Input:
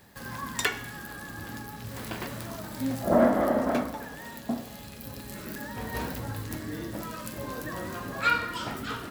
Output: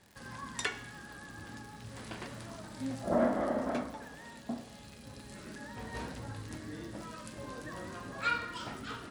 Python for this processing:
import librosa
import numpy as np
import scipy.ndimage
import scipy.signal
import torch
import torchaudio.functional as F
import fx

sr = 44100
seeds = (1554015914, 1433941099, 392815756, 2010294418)

y = scipy.signal.sosfilt(scipy.signal.ellip(4, 1.0, 40, 10000.0, 'lowpass', fs=sr, output='sos'), x)
y = fx.dmg_crackle(y, sr, seeds[0], per_s=160.0, level_db=-40.0)
y = y * librosa.db_to_amplitude(-6.5)